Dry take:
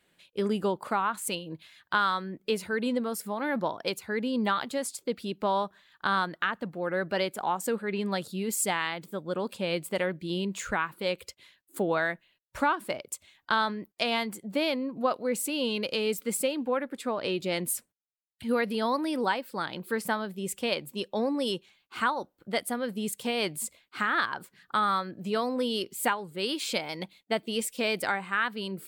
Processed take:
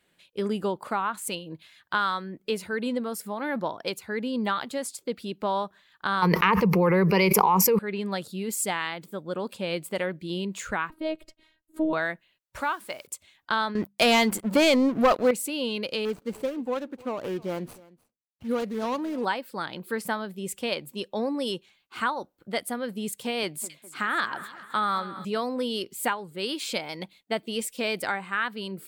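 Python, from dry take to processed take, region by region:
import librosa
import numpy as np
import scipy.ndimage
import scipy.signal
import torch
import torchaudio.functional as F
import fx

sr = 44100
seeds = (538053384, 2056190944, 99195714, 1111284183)

y = fx.chain(x, sr, fx.ripple_eq(per_octave=0.82, db=16),
    fx.env_flatten(amount_pct=100), at=(6.22, 7.79))
y = fx.chain(y, sr, fx.tilt_eq(slope=-3.5),
    fx.robotise(hz=316.0), at=(10.9, 11.93))
y = fx.chain(y, sr, fx.low_shelf(hz=480.0, db=-11.0),
    fx.quant_dither(seeds[0], bits=10, dither='triangular'), at=(12.61, 13.07))
y = fx.chain(y, sr, fx.hum_notches(base_hz=50, count=4),
    fx.leveller(passes=3), at=(13.75, 15.31))
y = fx.chain(y, sr, fx.median_filter(points=25),
    fx.echo_single(ms=305, db=-22.0), at=(16.05, 19.25))
y = fx.chain(y, sr, fx.highpass(hz=120.0, slope=12),
    fx.echo_split(split_hz=1700.0, low_ms=203, high_ms=265, feedback_pct=52, wet_db=-14), at=(23.43, 25.25))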